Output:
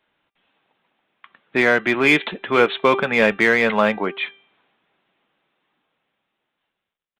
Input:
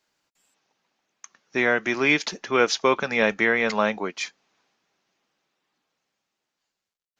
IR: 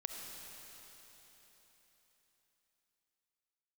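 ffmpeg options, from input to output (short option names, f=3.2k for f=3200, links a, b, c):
-filter_complex "[0:a]aresample=8000,aresample=44100,asplit=2[a][b];[b]volume=19dB,asoftclip=hard,volume=-19dB,volume=-4dB[c];[a][c]amix=inputs=2:normalize=0,bandreject=f=394.2:t=h:w=4,bandreject=f=788.4:t=h:w=4,bandreject=f=1.1826k:t=h:w=4,bandreject=f=1.5768k:t=h:w=4,bandreject=f=1.971k:t=h:w=4,bandreject=f=2.3652k:t=h:w=4,bandreject=f=2.7594k:t=h:w=4,bandreject=f=3.1536k:t=h:w=4,bandreject=f=3.5478k:t=h:w=4,bandreject=f=3.942k:t=h:w=4,volume=2dB"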